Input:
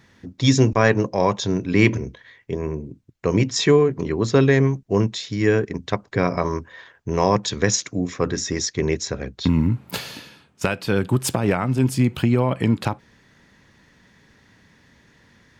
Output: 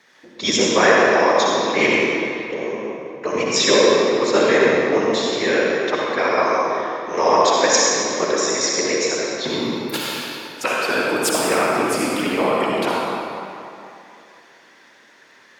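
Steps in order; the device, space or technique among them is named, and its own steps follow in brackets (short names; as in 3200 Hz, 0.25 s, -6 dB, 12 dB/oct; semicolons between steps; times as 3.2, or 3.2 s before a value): whispering ghost (whisperiser; HPF 490 Hz 12 dB/oct; reverb RT60 2.8 s, pre-delay 52 ms, DRR -4 dB); gain +2.5 dB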